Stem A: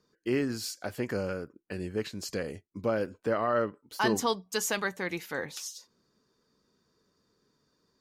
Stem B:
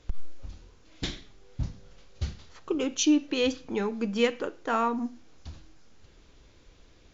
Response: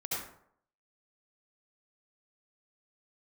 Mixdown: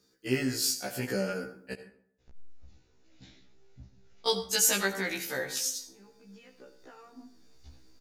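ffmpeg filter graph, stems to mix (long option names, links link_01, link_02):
-filter_complex "[0:a]highshelf=frequency=3500:gain=11.5,volume=1dB,asplit=3[link_01][link_02][link_03];[link_01]atrim=end=1.74,asetpts=PTS-STARTPTS,afade=type=out:start_time=1.736:duration=0.004:curve=hsin[link_04];[link_02]atrim=start=1.74:end=4.27,asetpts=PTS-STARTPTS,volume=0[link_05];[link_03]atrim=start=4.27,asetpts=PTS-STARTPTS,afade=type=in:duration=0.004:curve=hsin[link_06];[link_04][link_05][link_06]concat=n=3:v=0:a=1,asplit=3[link_07][link_08][link_09];[link_08]volume=-12.5dB[link_10];[1:a]bandreject=frequency=3200:width=12,acompressor=threshold=-39dB:ratio=2,alimiter=level_in=7dB:limit=-24dB:level=0:latency=1:release=129,volume=-7dB,adelay=2200,volume=-7dB,asplit=2[link_11][link_12];[link_12]volume=-20.5dB[link_13];[link_09]apad=whole_len=411690[link_14];[link_11][link_14]sidechaincompress=threshold=-42dB:ratio=3:attack=50:release=1010[link_15];[2:a]atrim=start_sample=2205[link_16];[link_10][link_13]amix=inputs=2:normalize=0[link_17];[link_17][link_16]afir=irnorm=-1:irlink=0[link_18];[link_07][link_15][link_18]amix=inputs=3:normalize=0,equalizer=frequency=1100:width_type=o:width=0.27:gain=-8,afftfilt=real='re*1.73*eq(mod(b,3),0)':imag='im*1.73*eq(mod(b,3),0)':win_size=2048:overlap=0.75"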